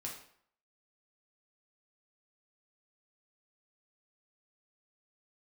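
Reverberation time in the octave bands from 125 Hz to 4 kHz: 0.55, 0.55, 0.60, 0.65, 0.55, 0.50 s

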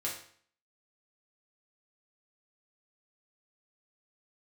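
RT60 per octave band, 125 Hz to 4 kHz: 0.55, 0.55, 0.55, 0.55, 0.55, 0.50 s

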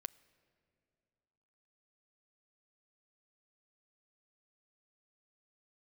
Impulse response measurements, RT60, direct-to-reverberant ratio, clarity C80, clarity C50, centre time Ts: 2.5 s, 17.5 dB, 22.0 dB, 21.0 dB, 3 ms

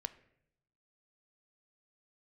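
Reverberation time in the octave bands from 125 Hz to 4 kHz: 1.1, 1.0, 0.85, 0.65, 0.70, 0.55 s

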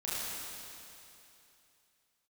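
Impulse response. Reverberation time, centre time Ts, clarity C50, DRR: 2.9 s, 0.205 s, -5.0 dB, -9.5 dB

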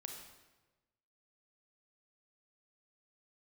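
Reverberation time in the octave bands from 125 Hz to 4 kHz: 1.4, 1.2, 1.3, 1.1, 1.0, 0.90 s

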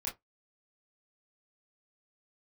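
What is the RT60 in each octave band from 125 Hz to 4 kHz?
0.20, 0.15, 0.15, 0.15, 0.10, 0.10 s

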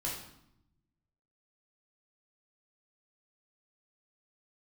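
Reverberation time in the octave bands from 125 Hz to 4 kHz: 1.5, 1.2, 0.75, 0.75, 0.65, 0.65 s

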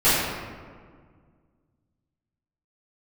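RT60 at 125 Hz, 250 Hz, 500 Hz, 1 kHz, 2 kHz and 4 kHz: 2.5, 2.4, 1.9, 1.7, 1.4, 0.90 s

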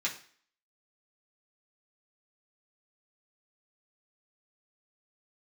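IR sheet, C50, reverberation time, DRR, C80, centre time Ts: 10.5 dB, 0.50 s, -5.0 dB, 15.0 dB, 18 ms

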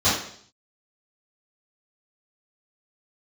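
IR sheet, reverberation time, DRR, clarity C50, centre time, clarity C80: 0.60 s, -14.5 dB, 2.5 dB, 48 ms, 7.0 dB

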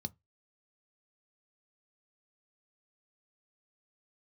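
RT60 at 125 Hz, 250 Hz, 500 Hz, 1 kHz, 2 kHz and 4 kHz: 0.25, 0.20, 0.15, 0.20, 0.20, 0.15 s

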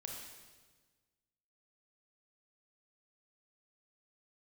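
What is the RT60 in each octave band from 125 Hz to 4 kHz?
1.9, 1.6, 1.5, 1.3, 1.3, 1.3 s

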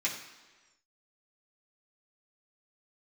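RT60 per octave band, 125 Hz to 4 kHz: 1.1, 1.2, 1.3, 1.3, 1.3, 1.3 s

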